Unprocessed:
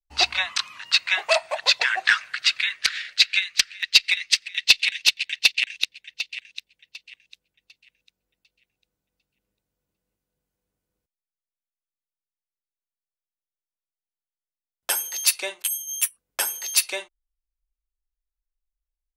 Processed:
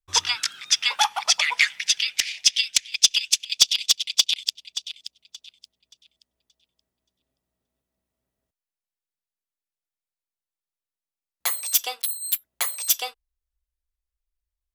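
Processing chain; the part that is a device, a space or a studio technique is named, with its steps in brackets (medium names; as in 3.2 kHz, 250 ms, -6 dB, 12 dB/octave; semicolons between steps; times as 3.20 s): nightcore (tape speed +30%)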